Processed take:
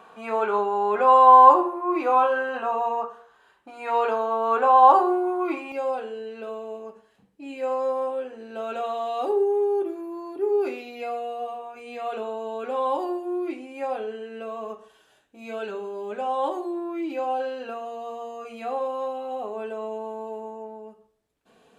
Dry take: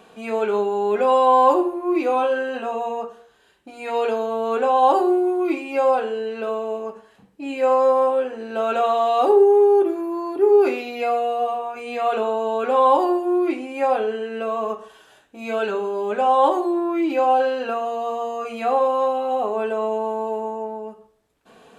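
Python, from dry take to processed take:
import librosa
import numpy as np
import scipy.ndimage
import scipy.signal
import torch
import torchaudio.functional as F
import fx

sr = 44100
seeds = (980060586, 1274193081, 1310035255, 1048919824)

y = fx.peak_eq(x, sr, hz=1100.0, db=fx.steps((0.0, 14.0), (5.72, -2.5)), octaves=1.5)
y = y * librosa.db_to_amplitude(-8.0)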